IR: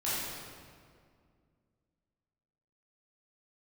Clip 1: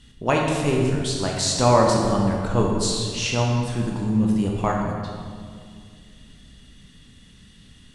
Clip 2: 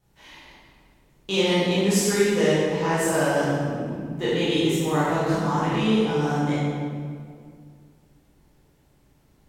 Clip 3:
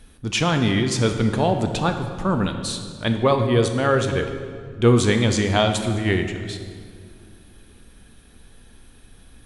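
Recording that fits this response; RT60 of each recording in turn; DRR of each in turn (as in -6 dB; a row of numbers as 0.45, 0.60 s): 2; 2.1, 2.1, 2.1 s; -1.0, -10.5, 6.0 dB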